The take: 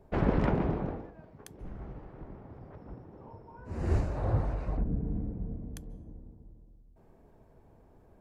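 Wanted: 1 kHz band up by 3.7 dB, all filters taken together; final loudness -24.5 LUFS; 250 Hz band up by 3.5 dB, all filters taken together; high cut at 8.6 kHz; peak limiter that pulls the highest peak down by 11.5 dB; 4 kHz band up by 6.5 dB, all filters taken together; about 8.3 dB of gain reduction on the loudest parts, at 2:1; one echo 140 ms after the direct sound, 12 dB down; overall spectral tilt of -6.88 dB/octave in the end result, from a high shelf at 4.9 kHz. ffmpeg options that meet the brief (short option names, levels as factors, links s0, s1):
-af "lowpass=8600,equalizer=f=250:t=o:g=4.5,equalizer=f=1000:t=o:g=4,equalizer=f=4000:t=o:g=7,highshelf=f=4900:g=3.5,acompressor=threshold=0.0224:ratio=2,alimiter=level_in=1.88:limit=0.0631:level=0:latency=1,volume=0.531,aecho=1:1:140:0.251,volume=7.08"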